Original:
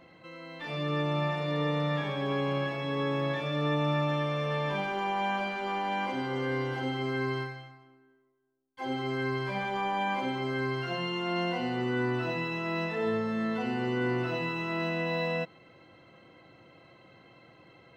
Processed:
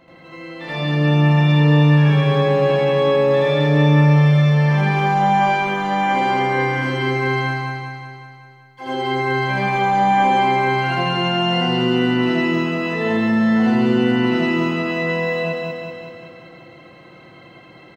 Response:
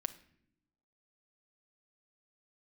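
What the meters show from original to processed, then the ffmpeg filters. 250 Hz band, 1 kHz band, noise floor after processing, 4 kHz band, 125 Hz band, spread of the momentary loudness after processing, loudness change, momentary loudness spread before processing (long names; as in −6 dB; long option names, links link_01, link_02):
+14.5 dB, +14.5 dB, −44 dBFS, +12.0 dB, +17.5 dB, 12 LU, +14.0 dB, 4 LU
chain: -filter_complex "[0:a]aecho=1:1:189|378|567|756|945|1134|1323|1512|1701:0.668|0.401|0.241|0.144|0.0866|0.052|0.0312|0.0187|0.0112,asplit=2[link_01][link_02];[1:a]atrim=start_sample=2205,adelay=81[link_03];[link_02][link_03]afir=irnorm=-1:irlink=0,volume=6dB[link_04];[link_01][link_04]amix=inputs=2:normalize=0,volume=3.5dB"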